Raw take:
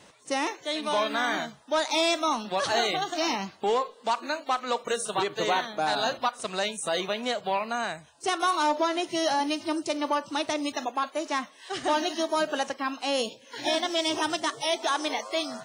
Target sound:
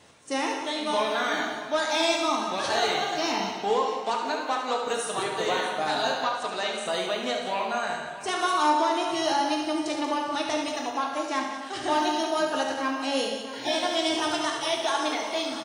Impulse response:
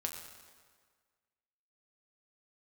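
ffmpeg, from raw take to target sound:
-filter_complex "[0:a]asettb=1/sr,asplit=3[a][b][c];[a]atrim=end=6.184[d];[b]atrim=start=6.18:end=6.86,asetpts=PTS-STARTPTS,afade=t=in:d=0.004:c=qsin,afade=t=out:st=0.676:d=0.004:c=qsin,highpass=230,lowpass=6.8k[e];[c]atrim=start=6.856[f];[d][e]acrossfade=d=0.004:c1=hsin:c2=qsin[g];[g][f]acrossfade=d=0.004:c1=qsin:c2=hsin,aecho=1:1:72|184|638:0.447|0.316|0.178[h];[1:a]atrim=start_sample=2205,asetrate=48510,aresample=44100[i];[h][i]afir=irnorm=-1:irlink=0"

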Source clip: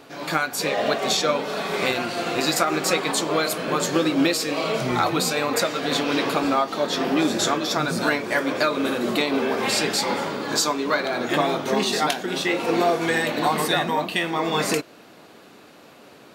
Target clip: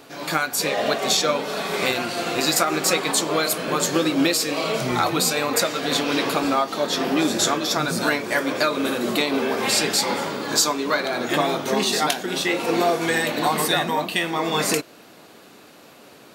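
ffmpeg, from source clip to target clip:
-af "highshelf=f=5.7k:g=7"

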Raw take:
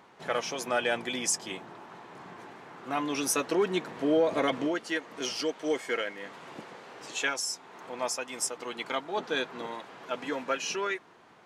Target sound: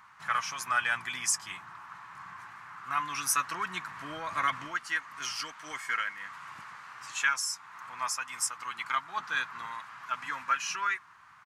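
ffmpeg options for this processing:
-af "firequalizer=gain_entry='entry(100,0);entry(230,-16);entry(450,-26);entry(1100,7);entry(3400,-5);entry(4900,-1);entry(11000,2)':delay=0.05:min_phase=1"

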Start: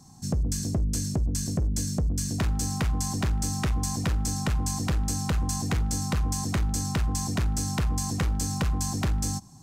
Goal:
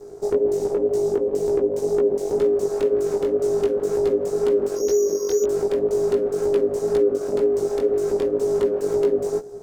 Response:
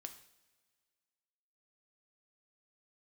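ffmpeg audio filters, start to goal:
-filter_complex "[0:a]asplit=2[a][b];[1:a]atrim=start_sample=2205,highshelf=f=8.6k:g=9[c];[b][c]afir=irnorm=-1:irlink=0,volume=-9dB[d];[a][d]amix=inputs=2:normalize=0,asettb=1/sr,asplit=3[e][f][g];[e]atrim=end=6.734[h];[f]atrim=start=6.73:end=7.37,asetpts=PTS-STARTPTS,afade=t=in:d=0.004:c=qsin,afade=t=out:st=0.636:d=0.004:c=qsin,asubboost=boost=12:cutoff=76[i];[g]atrim=start=7.366[j];[h][i]acrossfade=d=0.004:c1=hsin:c2=qsin[k];[k][j]acrossfade=d=0.004:c1=qsin:c2=hsin,asplit=2[l][m];[m]adynamicsmooth=sensitivity=2.5:basefreq=1k,volume=3dB[n];[l][n]amix=inputs=2:normalize=0,asettb=1/sr,asplit=3[o][p][q];[o]atrim=end=4.754[r];[p]atrim=start=4.75:end=5.44,asetpts=PTS-STARTPTS,afade=t=in:d=0.004:c=qsin,afade=t=out:st=0.686:d=0.004:c=qsin,lowpass=f=2.7k:t=q:w=0.5098,lowpass=f=2.7k:t=q:w=0.6013,lowpass=f=2.7k:t=q:w=0.9,lowpass=f=2.7k:t=q:w=2.563,afreqshift=-3200[s];[q]atrim=start=5.436[t];[r][s]acrossfade=d=0.004:c1=hsin:c2=qsin[u];[u][t]acrossfade=d=0.004:c1=qsin:c2=hsin,aeval=exprs='abs(val(0))':c=same,lowshelf=f=190:g=10,acompressor=threshold=-16dB:ratio=4,aeval=exprs='val(0)*sin(2*PI*410*n/s)':c=same,flanger=delay=16.5:depth=4.8:speed=2,volume=1.5dB"

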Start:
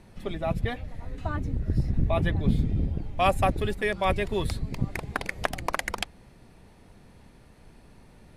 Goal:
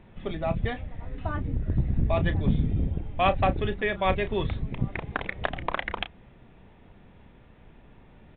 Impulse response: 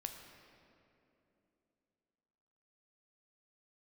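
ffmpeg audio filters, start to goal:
-filter_complex "[0:a]aresample=8000,aeval=exprs='clip(val(0),-1,0.168)':c=same,aresample=44100,asplit=2[a][b];[b]adelay=32,volume=-12dB[c];[a][c]amix=inputs=2:normalize=0"

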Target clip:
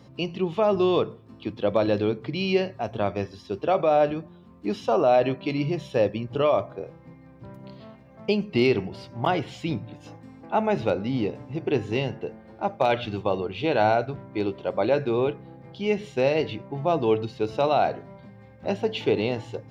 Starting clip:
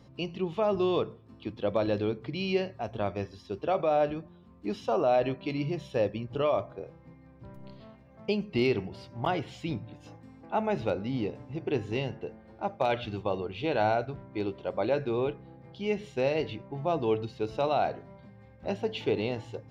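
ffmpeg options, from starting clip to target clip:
-af "highpass=85,volume=5.5dB"

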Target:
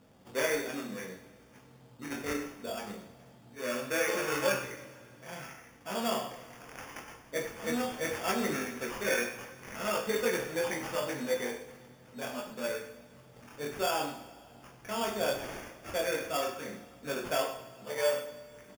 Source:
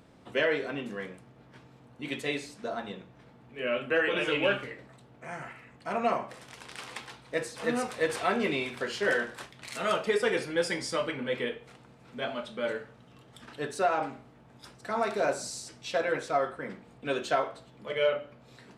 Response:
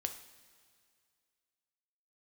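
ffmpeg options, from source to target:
-filter_complex "[0:a]flanger=delay=19.5:depth=5.6:speed=0.7,acrusher=samples=11:mix=1:aa=0.000001,asplit=2[a][b];[b]adelay=99.13,volume=-14dB,highshelf=f=4k:g=-2.23[c];[a][c]amix=inputs=2:normalize=0[d];[1:a]atrim=start_sample=2205[e];[d][e]afir=irnorm=-1:irlink=0"

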